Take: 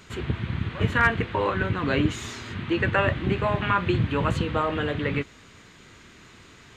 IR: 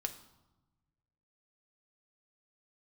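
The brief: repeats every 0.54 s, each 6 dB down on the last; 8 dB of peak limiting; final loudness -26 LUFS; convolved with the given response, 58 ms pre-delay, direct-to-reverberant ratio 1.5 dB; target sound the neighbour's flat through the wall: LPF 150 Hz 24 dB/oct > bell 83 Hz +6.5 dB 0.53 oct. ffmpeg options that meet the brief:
-filter_complex "[0:a]alimiter=limit=-16dB:level=0:latency=1,aecho=1:1:540|1080|1620|2160|2700|3240:0.501|0.251|0.125|0.0626|0.0313|0.0157,asplit=2[a][b];[1:a]atrim=start_sample=2205,adelay=58[c];[b][c]afir=irnorm=-1:irlink=0,volume=-1.5dB[d];[a][d]amix=inputs=2:normalize=0,lowpass=f=150:w=0.5412,lowpass=f=150:w=1.3066,equalizer=f=83:t=o:w=0.53:g=6.5,volume=1.5dB"

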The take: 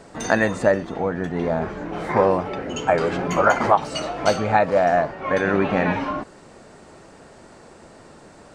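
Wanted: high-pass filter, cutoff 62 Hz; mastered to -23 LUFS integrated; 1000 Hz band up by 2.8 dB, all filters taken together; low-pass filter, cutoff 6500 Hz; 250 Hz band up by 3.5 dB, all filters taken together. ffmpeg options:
-af "highpass=62,lowpass=6.5k,equalizer=f=250:t=o:g=4.5,equalizer=f=1k:t=o:g=3.5,volume=-4dB"

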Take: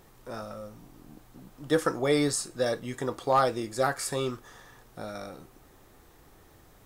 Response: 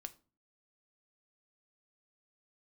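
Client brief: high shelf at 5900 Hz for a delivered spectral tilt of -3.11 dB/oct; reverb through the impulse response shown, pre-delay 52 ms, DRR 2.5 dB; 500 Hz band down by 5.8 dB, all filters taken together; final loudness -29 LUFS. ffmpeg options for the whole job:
-filter_complex "[0:a]equalizer=f=500:t=o:g=-7,highshelf=f=5.9k:g=8,asplit=2[a][b];[1:a]atrim=start_sample=2205,adelay=52[c];[b][c]afir=irnorm=-1:irlink=0,volume=2dB[d];[a][d]amix=inputs=2:normalize=0,volume=-1dB"

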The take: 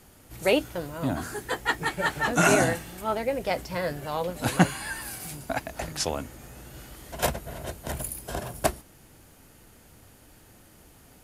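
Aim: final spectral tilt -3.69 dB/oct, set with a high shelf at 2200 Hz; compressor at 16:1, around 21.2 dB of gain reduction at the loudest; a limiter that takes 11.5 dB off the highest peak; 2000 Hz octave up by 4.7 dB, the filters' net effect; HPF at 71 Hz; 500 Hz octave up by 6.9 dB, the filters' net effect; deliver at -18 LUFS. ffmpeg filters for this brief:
-af "highpass=71,equalizer=f=500:t=o:g=8,equalizer=f=2k:t=o:g=4,highshelf=f=2.2k:g=3,acompressor=threshold=-32dB:ratio=16,volume=23dB,alimiter=limit=-7dB:level=0:latency=1"

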